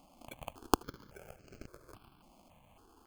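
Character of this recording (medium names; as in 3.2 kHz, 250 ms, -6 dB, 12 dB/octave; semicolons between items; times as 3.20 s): aliases and images of a low sample rate 1.9 kHz, jitter 0%; notches that jump at a steady rate 3.6 Hz 430–3500 Hz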